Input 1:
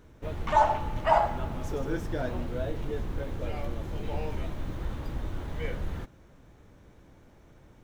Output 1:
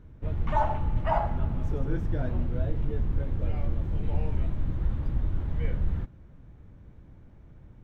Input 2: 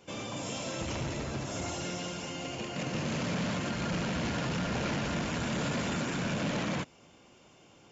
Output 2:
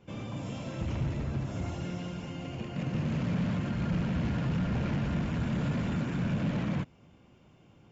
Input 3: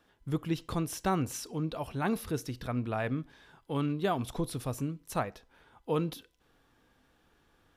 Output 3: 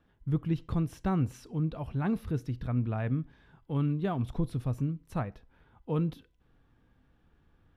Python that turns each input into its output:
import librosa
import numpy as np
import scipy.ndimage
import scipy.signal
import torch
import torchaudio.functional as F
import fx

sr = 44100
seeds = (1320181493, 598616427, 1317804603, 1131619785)

y = fx.bass_treble(x, sr, bass_db=12, treble_db=-11)
y = y * librosa.db_to_amplitude(-5.0)